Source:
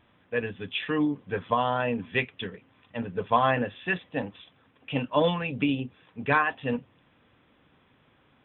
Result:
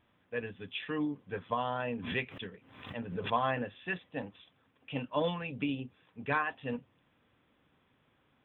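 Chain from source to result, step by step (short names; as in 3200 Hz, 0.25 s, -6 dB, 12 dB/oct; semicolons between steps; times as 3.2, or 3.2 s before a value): 2–3.33 backwards sustainer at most 75 dB/s; gain -8 dB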